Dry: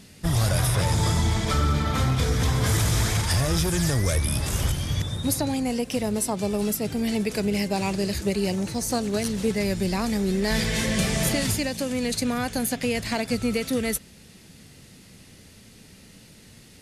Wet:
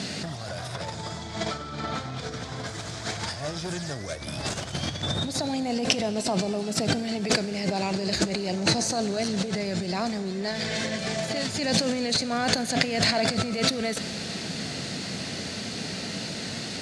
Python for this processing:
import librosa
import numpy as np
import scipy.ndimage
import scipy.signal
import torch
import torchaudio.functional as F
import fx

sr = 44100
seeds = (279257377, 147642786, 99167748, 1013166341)

y = fx.over_compress(x, sr, threshold_db=-35.0, ratio=-1.0)
y = fx.cabinet(y, sr, low_hz=140.0, low_slope=12, high_hz=7700.0, hz=(680.0, 1500.0, 4300.0), db=(8, 4, 6))
y = fx.rev_schroeder(y, sr, rt60_s=3.2, comb_ms=30, drr_db=14.5)
y = y * 10.0 ** (6.5 / 20.0)